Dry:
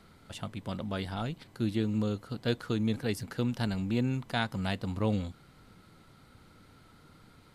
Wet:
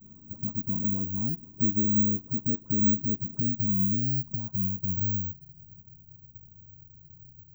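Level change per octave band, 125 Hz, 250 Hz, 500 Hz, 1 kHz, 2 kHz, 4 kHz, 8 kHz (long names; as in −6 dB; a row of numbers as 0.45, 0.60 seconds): +1.0 dB, +2.5 dB, −11.5 dB, below −15 dB, below −30 dB, below −40 dB, below −25 dB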